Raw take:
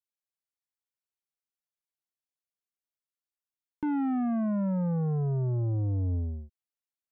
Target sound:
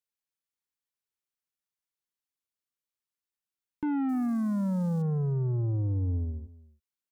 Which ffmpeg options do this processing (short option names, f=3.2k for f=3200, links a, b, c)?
-filter_complex "[0:a]equalizer=f=660:t=o:w=0.24:g=-13.5,asettb=1/sr,asplit=3[a][b][c];[a]atrim=end=4.094[d];[b]atrim=start=4.09:end=5.02,asetpts=PTS-STARTPTS,afade=t=in:d=0.004:c=qsin,afade=t=out:st=0.926:d=0.004:c=qsin,aeval=exprs='val(0)*gte(abs(val(0)),0.00631)':c=same[e];[c]atrim=start=5.016[f];[d][e]acrossfade=d=0.004:c1=hsin:c2=qsin[g];[g][f]acrossfade=d=0.004:c1=qsin:c2=hsin,aecho=1:1:306:0.1"